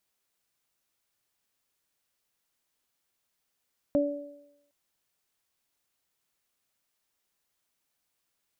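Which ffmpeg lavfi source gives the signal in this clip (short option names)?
-f lavfi -i "aevalsrc='0.075*pow(10,-3*t/0.78)*sin(2*PI*288*t)+0.0841*pow(10,-3*t/0.87)*sin(2*PI*576*t)':d=0.76:s=44100"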